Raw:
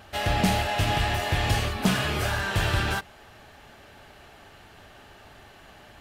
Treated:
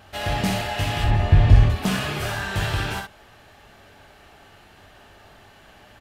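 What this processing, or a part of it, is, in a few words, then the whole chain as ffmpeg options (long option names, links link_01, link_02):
slapback doubling: -filter_complex "[0:a]asettb=1/sr,asplit=3[link_01][link_02][link_03];[link_01]atrim=end=1.044[link_04];[link_02]atrim=start=1.04:end=1.7,asetpts=PTS-STARTPTS,afade=type=in:duration=0.004:curve=qsin,afade=type=out:start_time=0.656:duration=0.004:curve=qsin,aemphasis=mode=reproduction:type=riaa[link_05];[link_03]atrim=start=1.696[link_06];[link_04][link_05]acrossfade=duration=0.004:curve1=hsin:curve2=qsin[link_07];[link_07][link_06]acrossfade=duration=0.004:curve1=qsin:curve2=hsin,asplit=3[link_08][link_09][link_10];[link_09]adelay=20,volume=-8.5dB[link_11];[link_10]adelay=62,volume=-5.5dB[link_12];[link_08][link_11][link_12]amix=inputs=3:normalize=0,volume=-1.5dB"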